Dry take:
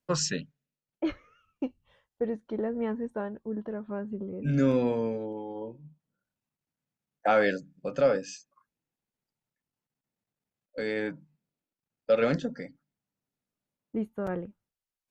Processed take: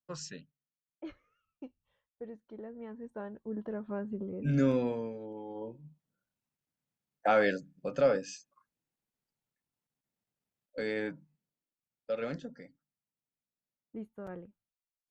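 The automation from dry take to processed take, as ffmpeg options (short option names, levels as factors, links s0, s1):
-af "volume=1.88,afade=t=in:st=2.9:d=0.86:silence=0.251189,afade=t=out:st=4.56:d=0.58:silence=0.398107,afade=t=in:st=5.14:d=0.55:silence=0.421697,afade=t=out:st=10.78:d=1.37:silence=0.375837"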